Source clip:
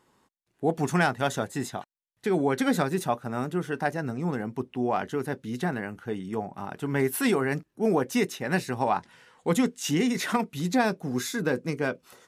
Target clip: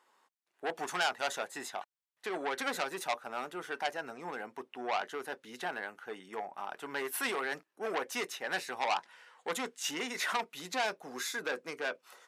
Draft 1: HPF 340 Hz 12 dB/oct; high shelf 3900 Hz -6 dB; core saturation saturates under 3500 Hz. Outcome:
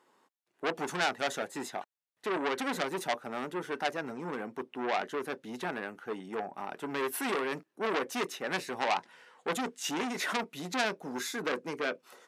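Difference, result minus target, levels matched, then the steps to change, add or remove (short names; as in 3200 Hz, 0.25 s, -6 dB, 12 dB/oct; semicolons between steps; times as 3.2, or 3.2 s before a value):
250 Hz band +5.5 dB
change: HPF 690 Hz 12 dB/oct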